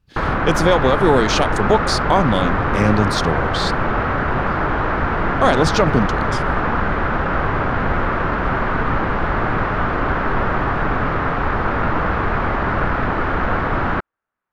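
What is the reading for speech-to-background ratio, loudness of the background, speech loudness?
1.0 dB, -20.0 LUFS, -19.0 LUFS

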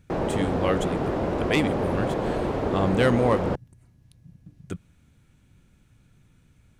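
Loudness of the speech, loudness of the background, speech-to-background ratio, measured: -27.0 LUFS, -27.0 LUFS, 0.0 dB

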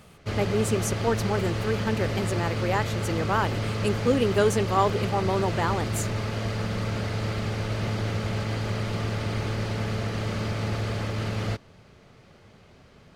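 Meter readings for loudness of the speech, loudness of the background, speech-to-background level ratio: -27.5 LUFS, -29.5 LUFS, 2.0 dB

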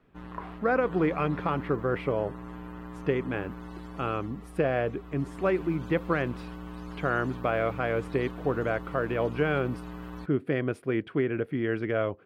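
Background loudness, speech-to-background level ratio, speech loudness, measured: -42.0 LUFS, 12.5 dB, -29.5 LUFS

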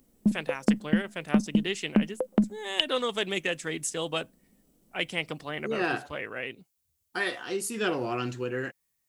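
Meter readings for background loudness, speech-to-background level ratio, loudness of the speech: -28.5 LUFS, -4.0 dB, -32.5 LUFS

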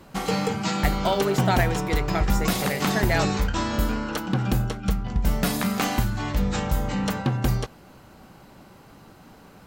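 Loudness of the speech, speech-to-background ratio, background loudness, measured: -28.0 LUFS, -2.5 dB, -25.5 LUFS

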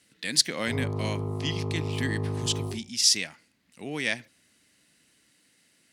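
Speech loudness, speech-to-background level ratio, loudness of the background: -28.0 LUFS, 4.5 dB, -32.5 LUFS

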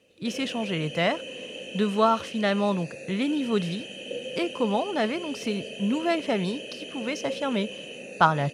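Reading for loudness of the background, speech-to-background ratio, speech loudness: -37.0 LUFS, 9.5 dB, -27.5 LUFS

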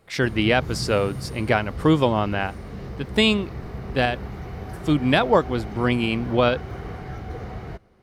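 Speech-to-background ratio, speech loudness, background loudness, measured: 12.5 dB, -22.5 LUFS, -35.0 LUFS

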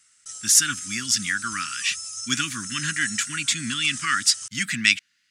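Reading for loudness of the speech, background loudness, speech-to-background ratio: -22.5 LUFS, -33.0 LUFS, 10.5 dB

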